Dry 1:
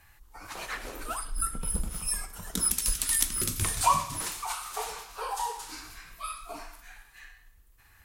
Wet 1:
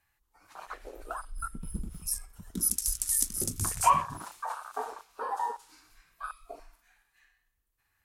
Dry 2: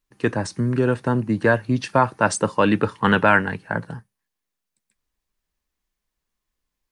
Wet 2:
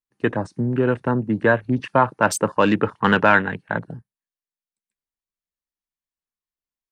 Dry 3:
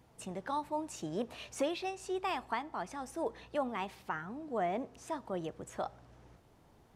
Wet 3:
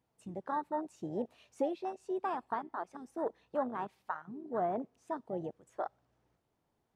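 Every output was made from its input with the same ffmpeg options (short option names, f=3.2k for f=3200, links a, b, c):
-af "lowshelf=f=84:g=-8,afwtdn=0.02,volume=1dB"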